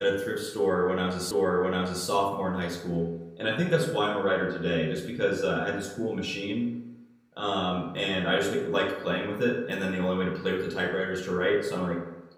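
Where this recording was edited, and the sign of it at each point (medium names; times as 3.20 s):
1.31 s: repeat of the last 0.75 s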